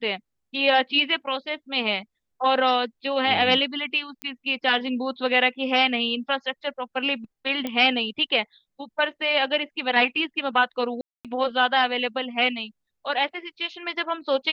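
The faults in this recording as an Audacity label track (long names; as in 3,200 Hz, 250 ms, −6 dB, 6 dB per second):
4.220000	4.220000	click −16 dBFS
7.670000	7.670000	click −15 dBFS
11.010000	11.250000	drop-out 237 ms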